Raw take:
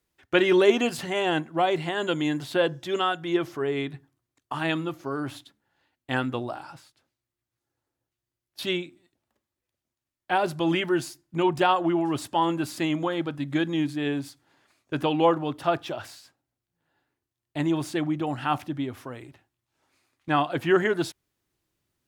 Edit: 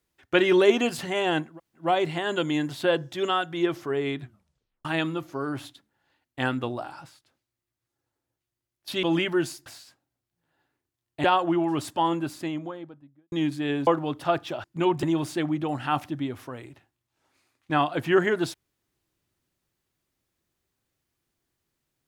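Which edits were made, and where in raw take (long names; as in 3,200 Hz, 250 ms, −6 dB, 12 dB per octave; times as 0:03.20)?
0:01.52: splice in room tone 0.29 s, crossfade 0.16 s
0:03.91: tape stop 0.65 s
0:08.74–0:10.59: remove
0:11.22–0:11.61: swap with 0:16.03–0:17.61
0:12.24–0:13.69: fade out and dull
0:14.24–0:15.26: remove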